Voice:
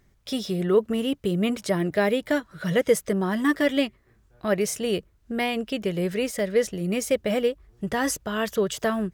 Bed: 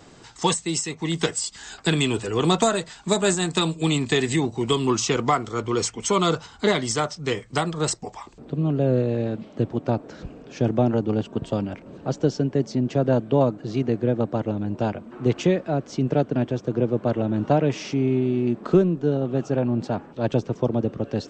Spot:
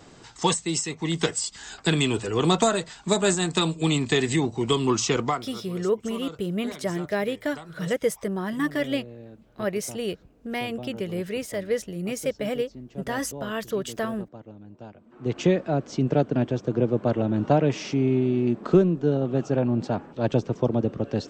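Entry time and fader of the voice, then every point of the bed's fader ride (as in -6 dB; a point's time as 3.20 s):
5.15 s, -4.0 dB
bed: 5.20 s -1 dB
5.68 s -18.5 dB
14.94 s -18.5 dB
15.45 s -0.5 dB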